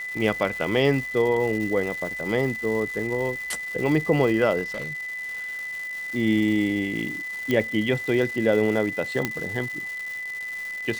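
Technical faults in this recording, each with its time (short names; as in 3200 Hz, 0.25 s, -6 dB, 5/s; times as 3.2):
crackle 470/s -32 dBFS
tone 2000 Hz -30 dBFS
4.63–5.43 clipped -27.5 dBFS
7.51 pop -11 dBFS
9.25 pop -9 dBFS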